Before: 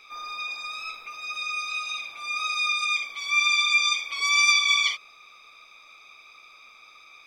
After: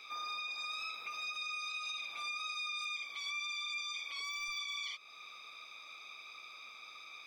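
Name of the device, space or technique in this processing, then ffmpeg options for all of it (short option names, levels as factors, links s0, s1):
broadcast voice chain: -af "highpass=100,deesser=0.6,acompressor=threshold=0.0126:ratio=3,equalizer=f=4000:t=o:w=0.6:g=4,alimiter=level_in=2.11:limit=0.0631:level=0:latency=1:release=60,volume=0.473,volume=0.794"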